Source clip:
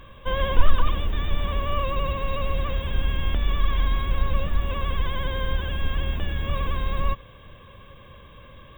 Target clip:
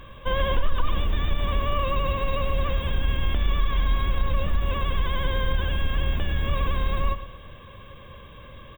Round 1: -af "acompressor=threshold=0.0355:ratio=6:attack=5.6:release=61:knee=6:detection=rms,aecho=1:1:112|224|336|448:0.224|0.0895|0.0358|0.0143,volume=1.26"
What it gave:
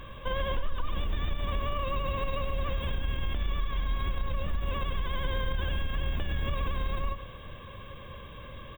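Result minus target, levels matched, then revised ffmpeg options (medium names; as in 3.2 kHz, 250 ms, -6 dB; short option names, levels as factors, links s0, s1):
compression: peak gain reduction +9 dB
-af "acompressor=threshold=0.119:ratio=6:attack=5.6:release=61:knee=6:detection=rms,aecho=1:1:112|224|336|448:0.224|0.0895|0.0358|0.0143,volume=1.26"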